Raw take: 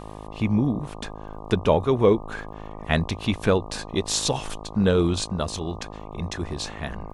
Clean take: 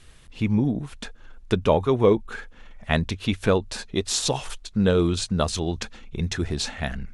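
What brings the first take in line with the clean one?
click removal
hum removal 52.7 Hz, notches 23
level 0 dB, from 0:05.24 +4 dB

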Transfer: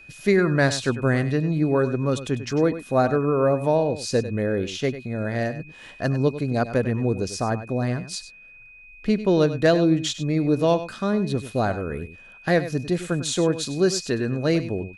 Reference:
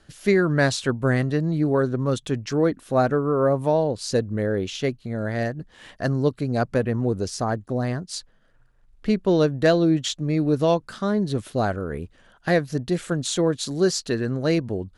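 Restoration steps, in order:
notch filter 2,500 Hz, Q 30
echo removal 98 ms −13 dB

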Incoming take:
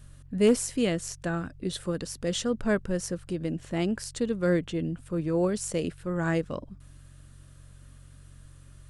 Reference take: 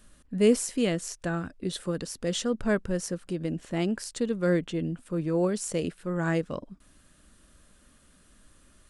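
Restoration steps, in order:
clipped peaks rebuilt −13.5 dBFS
hum removal 45.8 Hz, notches 3

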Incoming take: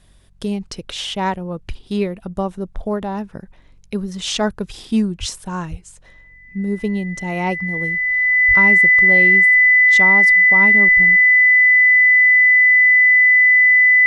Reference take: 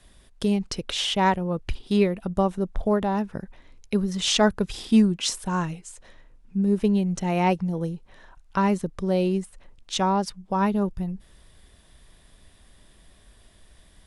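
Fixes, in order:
hum removal 45.9 Hz, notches 4
notch filter 2,000 Hz, Q 30
0:05.19–0:05.31: high-pass filter 140 Hz 24 dB per octave
0:05.70–0:05.82: high-pass filter 140 Hz 24 dB per octave
0:08.47–0:08.59: high-pass filter 140 Hz 24 dB per octave

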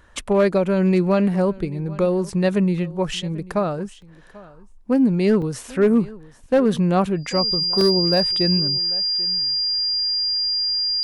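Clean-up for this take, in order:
clipped peaks rebuilt −10 dBFS
notch filter 4,800 Hz, Q 30
repair the gap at 0:02.30/0:04.02/0:04.72/0:05.42/0:07.81, 1.8 ms
echo removal 790 ms −21 dB

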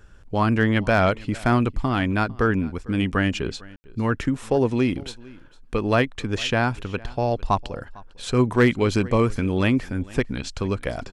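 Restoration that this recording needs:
clipped peaks rebuilt −8 dBFS
ambience match 0:03.76–0:03.84
echo removal 452 ms −22.5 dB

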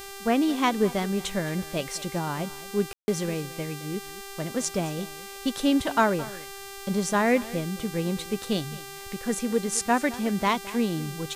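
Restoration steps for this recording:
click removal
hum removal 394.7 Hz, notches 39
ambience match 0:02.93–0:03.08
echo removal 217 ms −18 dB

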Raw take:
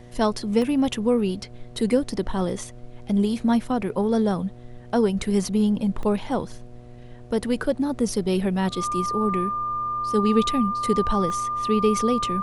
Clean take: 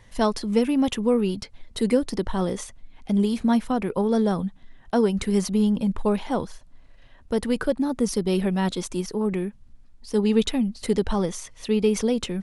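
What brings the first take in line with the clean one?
hum removal 121.4 Hz, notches 6
notch filter 1,200 Hz, Q 30
repair the gap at 0:00.62/0:06.03/0:11.30, 1.3 ms
noise reduction from a noise print 6 dB

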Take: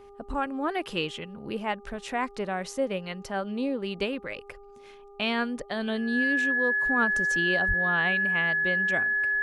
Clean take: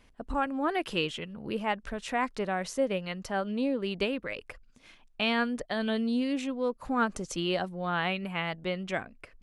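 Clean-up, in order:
hum removal 402.4 Hz, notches 3
notch filter 1,700 Hz, Q 30
0:07.67–0:07.79: high-pass filter 140 Hz 24 dB per octave

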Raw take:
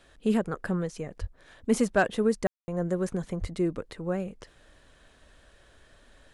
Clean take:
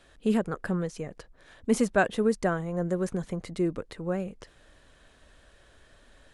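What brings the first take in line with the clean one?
clipped peaks rebuilt −13 dBFS
0:01.20–0:01.32: high-pass filter 140 Hz 24 dB per octave
0:03.40–0:03.52: high-pass filter 140 Hz 24 dB per octave
ambience match 0:02.47–0:02.68

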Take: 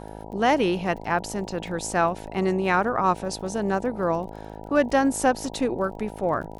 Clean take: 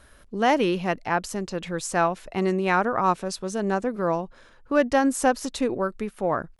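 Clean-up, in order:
click removal
hum removal 53.1 Hz, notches 18

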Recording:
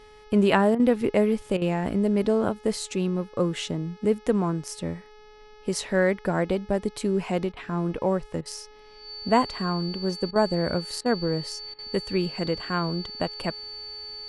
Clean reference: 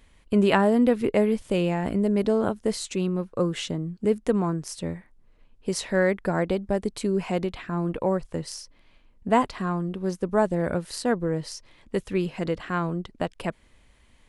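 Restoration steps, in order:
hum removal 424.2 Hz, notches 14
notch filter 4,500 Hz, Q 30
repair the gap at 0:00.75/0:01.57/0:07.52/0:08.41/0:10.31/0:11.01/0:11.74, 45 ms

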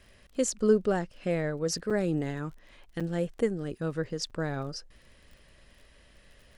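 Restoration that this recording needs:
click removal
repair the gap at 0:01.90/0:03.00/0:04.30, 6 ms

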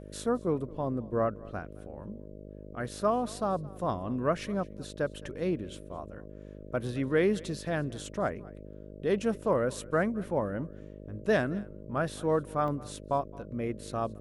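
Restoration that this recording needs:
hum removal 51 Hz, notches 12
repair the gap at 0:03.76/0:12.68, 1.2 ms
echo removal 217 ms −22 dB

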